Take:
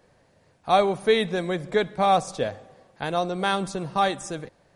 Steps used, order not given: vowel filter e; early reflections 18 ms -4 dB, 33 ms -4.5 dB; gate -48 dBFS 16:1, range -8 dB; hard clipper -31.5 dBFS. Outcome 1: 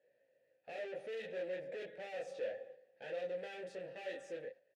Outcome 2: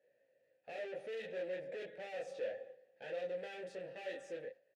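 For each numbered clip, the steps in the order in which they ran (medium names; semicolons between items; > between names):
early reflections > hard clipper > gate > vowel filter; gate > early reflections > hard clipper > vowel filter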